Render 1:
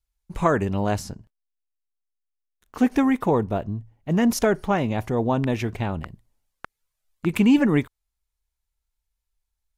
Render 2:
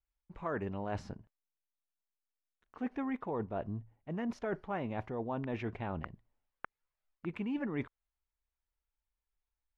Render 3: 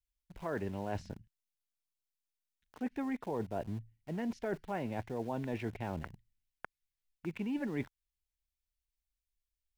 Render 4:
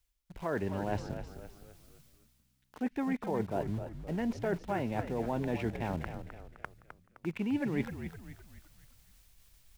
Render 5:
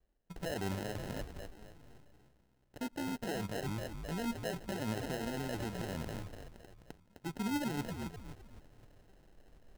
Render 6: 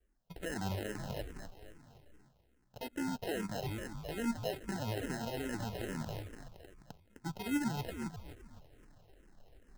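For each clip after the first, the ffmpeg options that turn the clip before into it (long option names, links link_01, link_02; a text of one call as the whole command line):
ffmpeg -i in.wav -af "lowpass=2300,lowshelf=frequency=240:gain=-6.5,areverse,acompressor=threshold=-30dB:ratio=6,areverse,volume=-4dB" out.wav
ffmpeg -i in.wav -filter_complex "[0:a]acrossover=split=210|1900[link_01][link_02][link_03];[link_02]aeval=exprs='val(0)*gte(abs(val(0)),0.00266)':channel_layout=same[link_04];[link_01][link_04][link_03]amix=inputs=3:normalize=0,equalizer=frequency=1200:width=5.2:gain=-9" out.wav
ffmpeg -i in.wav -filter_complex "[0:a]areverse,acompressor=mode=upward:threshold=-45dB:ratio=2.5,areverse,asplit=6[link_01][link_02][link_03][link_04][link_05][link_06];[link_02]adelay=258,afreqshift=-64,volume=-9dB[link_07];[link_03]adelay=516,afreqshift=-128,volume=-15.7dB[link_08];[link_04]adelay=774,afreqshift=-192,volume=-22.5dB[link_09];[link_05]adelay=1032,afreqshift=-256,volume=-29.2dB[link_10];[link_06]adelay=1290,afreqshift=-320,volume=-36dB[link_11];[link_01][link_07][link_08][link_09][link_10][link_11]amix=inputs=6:normalize=0,volume=3.5dB" out.wav
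ffmpeg -i in.wav -af "alimiter=level_in=5.5dB:limit=-24dB:level=0:latency=1:release=42,volume=-5.5dB,flanger=delay=1.2:depth=9.4:regen=60:speed=0.73:shape=triangular,acrusher=samples=38:mix=1:aa=0.000001,volume=4.5dB" out.wav
ffmpeg -i in.wav -filter_complex "[0:a]asplit=2[link_01][link_02];[link_02]afreqshift=-2.4[link_03];[link_01][link_03]amix=inputs=2:normalize=1,volume=3dB" out.wav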